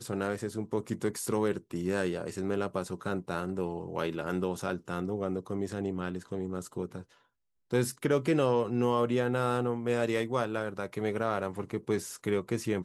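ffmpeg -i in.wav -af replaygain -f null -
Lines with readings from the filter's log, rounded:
track_gain = +11.8 dB
track_peak = 0.130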